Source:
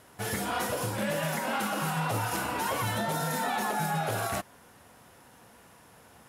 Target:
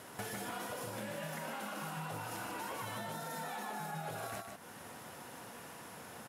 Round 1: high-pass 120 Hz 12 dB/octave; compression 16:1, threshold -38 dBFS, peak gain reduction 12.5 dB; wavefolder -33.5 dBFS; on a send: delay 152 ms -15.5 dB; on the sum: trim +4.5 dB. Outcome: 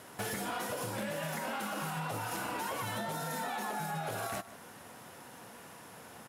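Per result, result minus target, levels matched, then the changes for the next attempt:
echo-to-direct -10.5 dB; compression: peak gain reduction -6 dB
change: delay 152 ms -5 dB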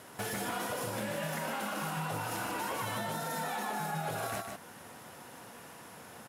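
compression: peak gain reduction -6 dB
change: compression 16:1, threshold -44.5 dBFS, peak gain reduction 18.5 dB

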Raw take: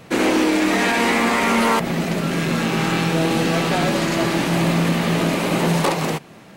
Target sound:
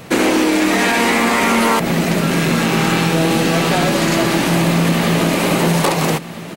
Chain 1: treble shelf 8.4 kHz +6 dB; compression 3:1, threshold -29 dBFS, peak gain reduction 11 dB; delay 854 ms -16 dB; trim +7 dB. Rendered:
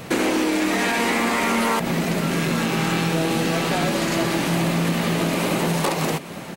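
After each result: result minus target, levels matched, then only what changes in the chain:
echo 445 ms early; compression: peak gain reduction +6.5 dB
change: delay 1299 ms -16 dB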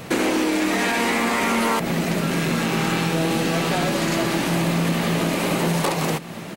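compression: peak gain reduction +6.5 dB
change: compression 3:1, threshold -19.5 dBFS, peak gain reduction 4.5 dB

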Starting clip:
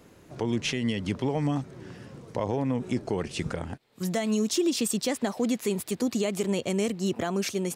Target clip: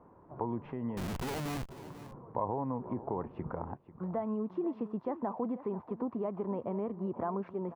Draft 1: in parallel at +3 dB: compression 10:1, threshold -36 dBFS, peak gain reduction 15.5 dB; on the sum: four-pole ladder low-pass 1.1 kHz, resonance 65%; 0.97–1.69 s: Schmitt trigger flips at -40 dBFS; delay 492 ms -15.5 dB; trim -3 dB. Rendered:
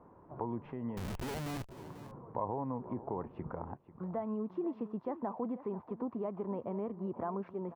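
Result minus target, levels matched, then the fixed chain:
compression: peak gain reduction +7 dB
in parallel at +3 dB: compression 10:1, threshold -28 dBFS, peak gain reduction 8 dB; on the sum: four-pole ladder low-pass 1.1 kHz, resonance 65%; 0.97–1.69 s: Schmitt trigger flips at -40 dBFS; delay 492 ms -15.5 dB; trim -3 dB

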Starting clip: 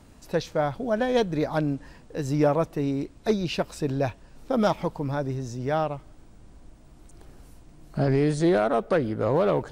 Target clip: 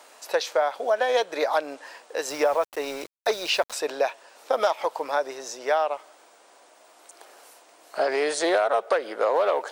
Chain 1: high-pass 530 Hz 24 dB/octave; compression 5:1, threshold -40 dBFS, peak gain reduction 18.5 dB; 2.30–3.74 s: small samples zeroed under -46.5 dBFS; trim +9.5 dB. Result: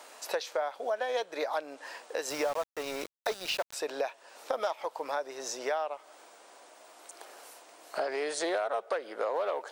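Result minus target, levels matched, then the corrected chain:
compression: peak gain reduction +9 dB
high-pass 530 Hz 24 dB/octave; compression 5:1, threshold -28.5 dBFS, peak gain reduction 9 dB; 2.30–3.74 s: small samples zeroed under -46.5 dBFS; trim +9.5 dB

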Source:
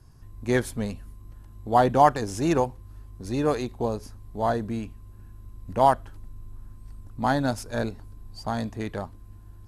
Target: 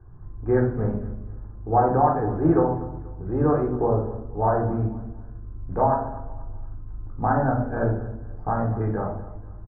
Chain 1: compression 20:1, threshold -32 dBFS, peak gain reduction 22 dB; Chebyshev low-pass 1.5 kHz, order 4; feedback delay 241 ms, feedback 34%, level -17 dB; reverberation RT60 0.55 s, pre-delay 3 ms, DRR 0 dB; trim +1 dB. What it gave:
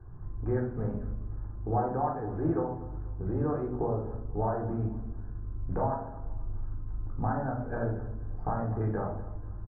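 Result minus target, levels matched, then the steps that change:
compression: peak gain reduction +11 dB
change: compression 20:1, threshold -20.5 dBFS, peak gain reduction 11 dB

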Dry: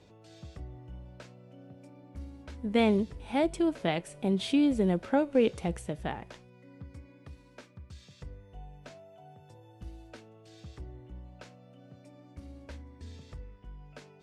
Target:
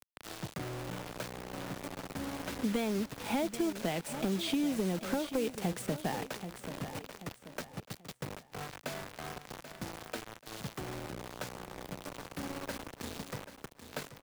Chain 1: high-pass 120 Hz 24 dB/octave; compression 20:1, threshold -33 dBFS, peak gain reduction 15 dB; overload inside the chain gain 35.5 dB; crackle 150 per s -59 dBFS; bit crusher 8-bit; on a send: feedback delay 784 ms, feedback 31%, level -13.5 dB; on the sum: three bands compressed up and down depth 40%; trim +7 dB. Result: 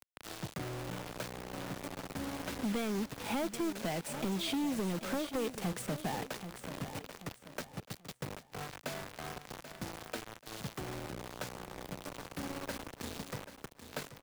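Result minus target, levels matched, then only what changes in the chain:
overload inside the chain: distortion +9 dB
change: overload inside the chain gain 29.5 dB

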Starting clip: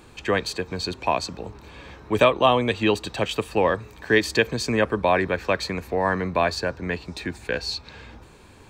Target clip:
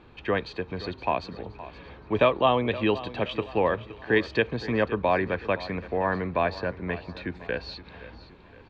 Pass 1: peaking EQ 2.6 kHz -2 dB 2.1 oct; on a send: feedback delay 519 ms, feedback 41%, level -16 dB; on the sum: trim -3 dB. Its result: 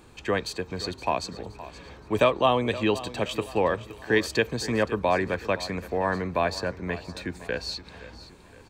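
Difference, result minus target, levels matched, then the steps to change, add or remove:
4 kHz band +3.5 dB
add first: low-pass 3.7 kHz 24 dB/octave

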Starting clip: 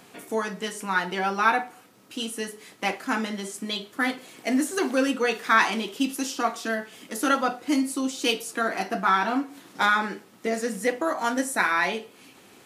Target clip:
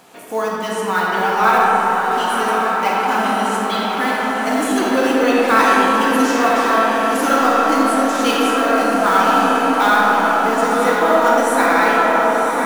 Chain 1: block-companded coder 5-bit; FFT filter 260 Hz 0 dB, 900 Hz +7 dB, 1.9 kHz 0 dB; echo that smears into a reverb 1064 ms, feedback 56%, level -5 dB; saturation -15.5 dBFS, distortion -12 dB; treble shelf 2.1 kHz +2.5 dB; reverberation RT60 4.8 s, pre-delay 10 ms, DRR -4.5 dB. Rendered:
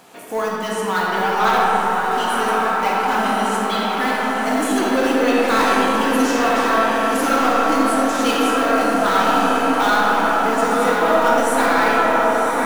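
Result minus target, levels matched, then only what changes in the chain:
saturation: distortion +13 dB
change: saturation -5 dBFS, distortion -25 dB

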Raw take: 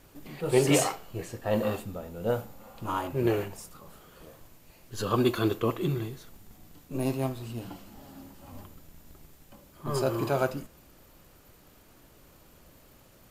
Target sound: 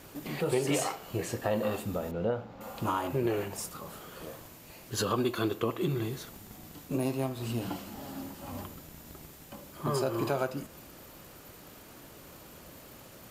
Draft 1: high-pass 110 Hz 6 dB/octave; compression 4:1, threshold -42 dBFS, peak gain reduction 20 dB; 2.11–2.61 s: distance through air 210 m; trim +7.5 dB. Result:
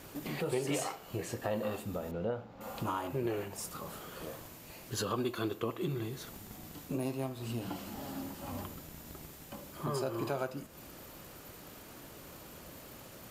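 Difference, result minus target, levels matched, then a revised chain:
compression: peak gain reduction +5 dB
high-pass 110 Hz 6 dB/octave; compression 4:1, threshold -35.5 dBFS, peak gain reduction 15 dB; 2.11–2.61 s: distance through air 210 m; trim +7.5 dB

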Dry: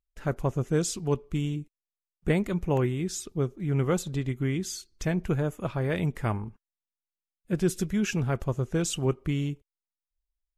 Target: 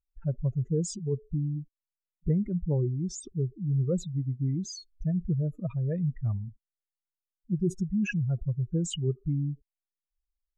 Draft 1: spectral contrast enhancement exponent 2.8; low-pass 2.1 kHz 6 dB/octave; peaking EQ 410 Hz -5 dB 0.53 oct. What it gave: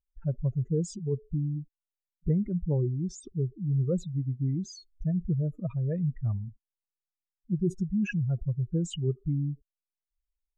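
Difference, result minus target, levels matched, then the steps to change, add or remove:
4 kHz band -4.0 dB
change: low-pass 4.9 kHz 6 dB/octave

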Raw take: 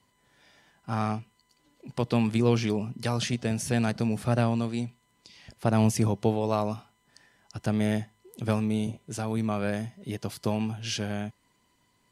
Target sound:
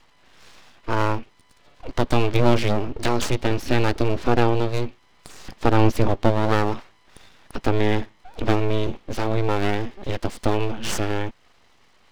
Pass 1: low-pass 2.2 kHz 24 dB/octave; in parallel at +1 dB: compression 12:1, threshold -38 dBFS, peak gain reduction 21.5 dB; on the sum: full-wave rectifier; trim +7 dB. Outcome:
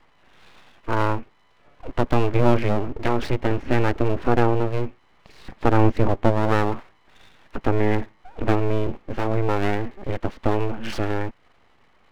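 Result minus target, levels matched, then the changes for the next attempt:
4 kHz band -6.5 dB
change: low-pass 4.6 kHz 24 dB/octave

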